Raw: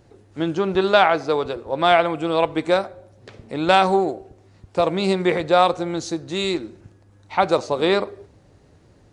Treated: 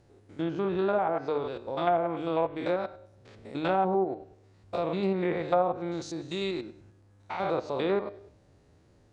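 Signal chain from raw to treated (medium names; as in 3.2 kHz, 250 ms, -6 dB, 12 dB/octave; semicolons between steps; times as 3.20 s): spectrogram pixelated in time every 100 ms; low-pass that closes with the level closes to 860 Hz, closed at -13.5 dBFS; de-hum 151.4 Hz, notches 31; trim -6.5 dB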